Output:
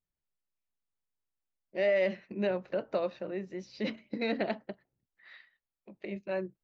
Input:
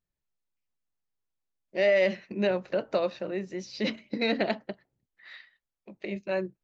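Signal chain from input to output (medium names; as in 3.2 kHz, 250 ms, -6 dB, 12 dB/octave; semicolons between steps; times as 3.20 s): treble shelf 4.8 kHz -12 dB; trim -4 dB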